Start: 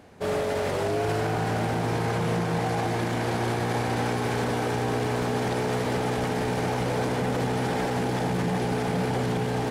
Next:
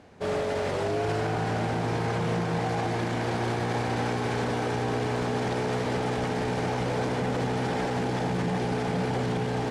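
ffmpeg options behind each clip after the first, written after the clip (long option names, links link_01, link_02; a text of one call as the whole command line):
ffmpeg -i in.wav -af "lowpass=7900,volume=-1.5dB" out.wav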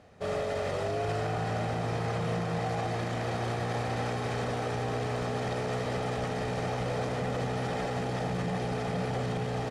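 ffmpeg -i in.wav -af "aecho=1:1:1.6:0.39,volume=-4dB" out.wav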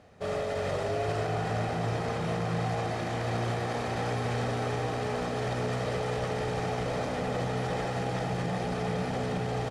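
ffmpeg -i in.wav -af "aecho=1:1:359:0.473" out.wav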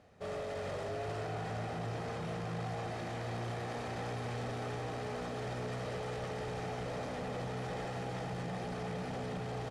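ffmpeg -i in.wav -af "asoftclip=type=tanh:threshold=-27dB,volume=-6dB" out.wav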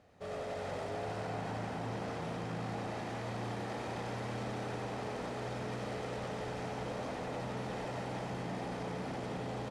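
ffmpeg -i in.wav -filter_complex "[0:a]asplit=9[link_01][link_02][link_03][link_04][link_05][link_06][link_07][link_08][link_09];[link_02]adelay=93,afreqshift=85,volume=-5dB[link_10];[link_03]adelay=186,afreqshift=170,volume=-9.6dB[link_11];[link_04]adelay=279,afreqshift=255,volume=-14.2dB[link_12];[link_05]adelay=372,afreqshift=340,volume=-18.7dB[link_13];[link_06]adelay=465,afreqshift=425,volume=-23.3dB[link_14];[link_07]adelay=558,afreqshift=510,volume=-27.9dB[link_15];[link_08]adelay=651,afreqshift=595,volume=-32.5dB[link_16];[link_09]adelay=744,afreqshift=680,volume=-37.1dB[link_17];[link_01][link_10][link_11][link_12][link_13][link_14][link_15][link_16][link_17]amix=inputs=9:normalize=0,volume=-2dB" out.wav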